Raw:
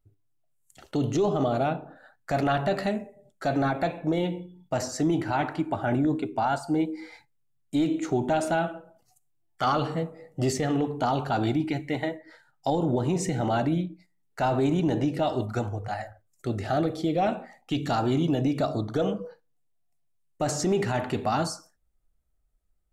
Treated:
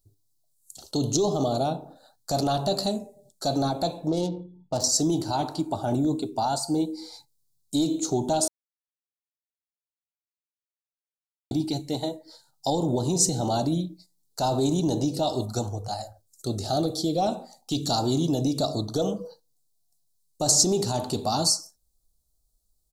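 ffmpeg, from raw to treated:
-filter_complex "[0:a]asettb=1/sr,asplit=3[s0][s1][s2];[s0]atrim=end=4.084[s3];[s1]atrim=start=4.08:end=4.84,asetpts=PTS-STARTPTS,afade=t=in:d=0.004:c=qsin,afade=t=out:st=0.756:d=0.004:c=qsin,adynamicsmooth=sensitivity=5.5:basefreq=1400[s4];[s2]atrim=start=4.836[s5];[s3][s4]acrossfade=d=0.004:c1=hsin:c2=qsin[s6];[s6][s5]acrossfade=d=0.004:c1=qsin:c2=hsin,asplit=3[s7][s8][s9];[s7]atrim=end=8.48,asetpts=PTS-STARTPTS,afade=t=out:st=8.476:d=0.004:c=hsin[s10];[s8]atrim=start=8.48:end=11.51,asetpts=PTS-STARTPTS,volume=0[s11];[s9]atrim=start=11.51,asetpts=PTS-STARTPTS,afade=t=in:d=0.004:c=hsin[s12];[s10][s11][s12]concat=n=3:v=0:a=1,firequalizer=gain_entry='entry(930,0);entry(1900,-20);entry(4100,14)':delay=0.05:min_phase=1"

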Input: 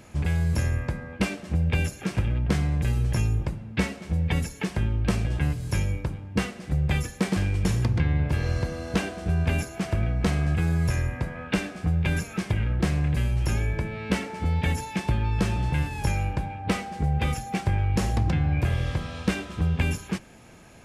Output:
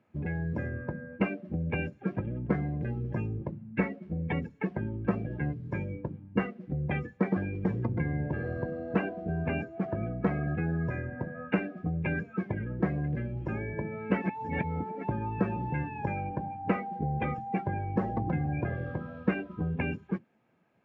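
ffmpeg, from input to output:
-filter_complex "[0:a]asplit=3[s0][s1][s2];[s0]atrim=end=14.222[s3];[s1]atrim=start=14.218:end=15.032,asetpts=PTS-STARTPTS,areverse[s4];[s2]atrim=start=15.028[s5];[s3][s4]acrossfade=d=0.004:c1=hsin:c2=hsin[s6];[s6][s5]acrossfade=d=0.004:c1=hsin:c2=hsin,lowpass=2200,afftdn=nr=19:nf=-33,highpass=180"

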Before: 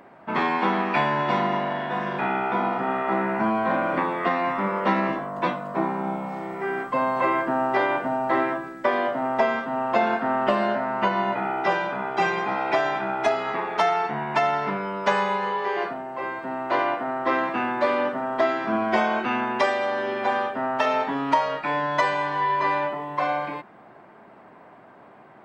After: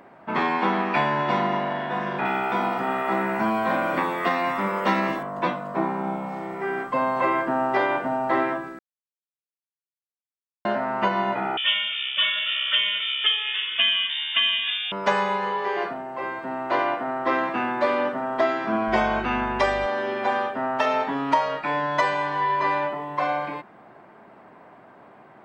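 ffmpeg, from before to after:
-filter_complex "[0:a]asettb=1/sr,asplit=3[s0][s1][s2];[s0]atrim=end=2.254[s3];[s1]atrim=start=2.25:end=5.23,asetpts=PTS-STARTPTS,afade=t=in:d=0.004:c=qsin,afade=t=out:st=2.976:d=0.004:c=qsin,aemphasis=mode=production:type=75fm[s4];[s2]atrim=start=5.226[s5];[s3][s4]acrossfade=d=0.004:c1=hsin:c2=qsin[s6];[s6][s5]acrossfade=d=0.004:c1=qsin:c2=hsin,asettb=1/sr,asplit=3[s7][s8][s9];[s7]atrim=end=11.574[s10];[s8]atrim=start=11.57:end=14.92,asetpts=PTS-STARTPTS,afade=t=in:d=0.004:c=qsin,afade=t=out:st=3.346:d=0.004:c=qsin,lowpass=f=3200:t=q:w=0.5098,lowpass=f=3200:t=q:w=0.6013,lowpass=f=3200:t=q:w=0.9,lowpass=f=3200:t=q:w=2.563,afreqshift=-3800[s11];[s9]atrim=start=14.916[s12];[s10][s11]acrossfade=d=0.004:c1=hsin:c2=qsin[s13];[s13][s12]acrossfade=d=0.004:c1=qsin:c2=hsin,asettb=1/sr,asplit=3[s14][s15][s16];[s14]atrim=end=18.884[s17];[s15]atrim=start=18.88:end=19.86,asetpts=PTS-STARTPTS,afade=t=in:d=0.004:c=qsin,afade=t=out:st=0.976:d=0.004:c=qsin,aeval=exprs='val(0)+0.0158*(sin(2*PI*50*n/s)+sin(2*PI*2*50*n/s)/2+sin(2*PI*3*50*n/s)/3+sin(2*PI*4*50*n/s)/4+sin(2*PI*5*50*n/s)/5)':c=same[s18];[s16]atrim=start=19.856[s19];[s17][s18]acrossfade=d=0.004:c1=hsin:c2=qsin[s20];[s20][s19]acrossfade=d=0.004:c1=qsin:c2=hsin,asplit=3[s21][s22][s23];[s21]atrim=end=8.79,asetpts=PTS-STARTPTS,afade=t=out:st=8.786:d=0.004:c=hsin[s24];[s22]atrim=start=8.79:end=10.65,asetpts=PTS-STARTPTS,volume=0[s25];[s23]atrim=start=10.65,asetpts=PTS-STARTPTS,afade=t=in:d=0.004:c=hsin[s26];[s24][s25][s26]concat=n=3:v=0:a=1"

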